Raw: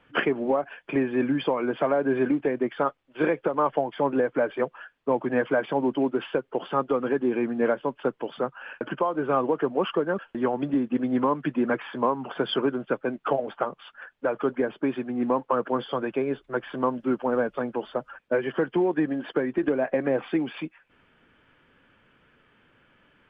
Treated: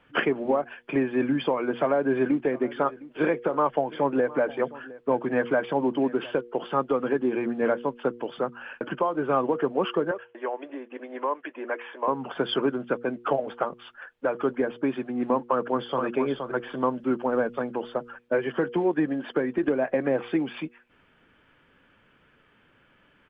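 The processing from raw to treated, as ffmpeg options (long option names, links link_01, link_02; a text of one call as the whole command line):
ffmpeg -i in.wav -filter_complex "[0:a]asettb=1/sr,asplit=3[link_01][link_02][link_03];[link_01]atrim=end=1.764[link_04];[link_02]atrim=start=1.76:end=6.41,asetpts=PTS-STARTPTS,afade=type=in:duration=0.004:curve=qsin,afade=type=out:start_time=4.646:duration=0.004:curve=qsin,aecho=1:1:711:0.106,atrim=end_sample=205065[link_05];[link_03]atrim=start=6.406[link_06];[link_04][link_05]acrossfade=duration=0.004:curve1=hsin:curve2=qsin[link_07];[link_07][link_06]acrossfade=duration=0.004:curve1=qsin:curve2=hsin,asettb=1/sr,asplit=3[link_08][link_09][link_10];[link_08]atrim=end=10.114[link_11];[link_09]atrim=start=10.11:end=12.08,asetpts=PTS-STARTPTS,afade=type=in:duration=0.004:curve=qsin,afade=type=out:start_time=1.966:duration=0.004:curve=qsin,highpass=frequency=420:width=0.5412,highpass=frequency=420:width=1.3066,equalizer=frequency=450:width_type=q:width=4:gain=-4,equalizer=frequency=770:width_type=q:width=4:gain=-4,equalizer=frequency=1300:width_type=q:width=4:gain=-7,lowpass=frequency=2900:width=0.5412,lowpass=frequency=2900:width=1.3066[link_12];[link_10]atrim=start=12.076[link_13];[link_11][link_12]acrossfade=duration=0.004:curve1=hsin:curve2=qsin[link_14];[link_14][link_13]acrossfade=duration=0.004:curve1=qsin:curve2=hsin,asplit=2[link_15][link_16];[link_16]afade=type=in:start_time=15.49:duration=0.01,afade=type=out:start_time=16.04:duration=0.01,aecho=0:1:470|940:0.530884|0.0530884[link_17];[link_15][link_17]amix=inputs=2:normalize=0,bandreject=frequency=119.8:width_type=h:width=4,bandreject=frequency=239.6:width_type=h:width=4,bandreject=frequency=359.4:width_type=h:width=4,bandreject=frequency=479.2:width_type=h:width=4" out.wav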